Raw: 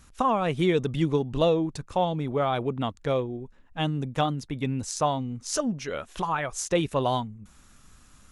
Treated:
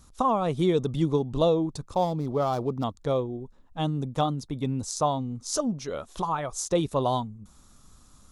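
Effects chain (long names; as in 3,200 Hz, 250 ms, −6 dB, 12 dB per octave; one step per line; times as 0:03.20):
0:01.94–0:02.84: running median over 15 samples
flat-topped bell 2,100 Hz −9 dB 1.2 octaves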